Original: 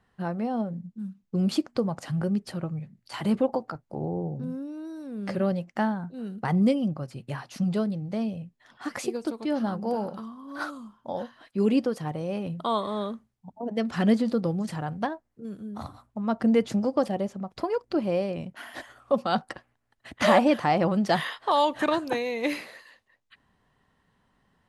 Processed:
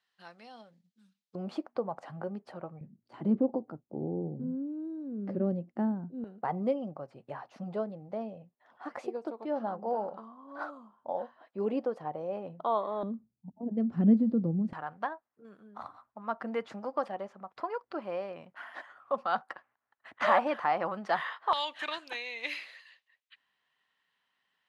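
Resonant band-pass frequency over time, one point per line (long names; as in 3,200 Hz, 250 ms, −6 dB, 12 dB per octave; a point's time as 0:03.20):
resonant band-pass, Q 1.4
4,200 Hz
from 0:01.35 790 Hz
from 0:02.81 290 Hz
from 0:06.24 720 Hz
from 0:13.03 210 Hz
from 0:14.73 1,200 Hz
from 0:21.53 2,900 Hz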